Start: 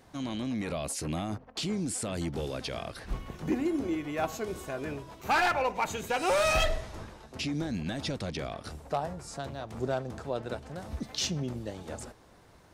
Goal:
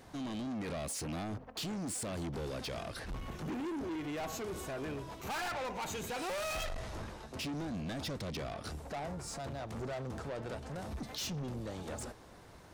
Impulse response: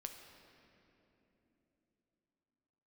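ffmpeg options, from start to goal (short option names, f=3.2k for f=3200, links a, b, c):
-filter_complex "[0:a]asplit=2[a][b];[b]alimiter=level_in=6.5dB:limit=-24dB:level=0:latency=1:release=108,volume=-6.5dB,volume=-2.5dB[c];[a][c]amix=inputs=2:normalize=0,asoftclip=type=tanh:threshold=-33.5dB,volume=-2.5dB"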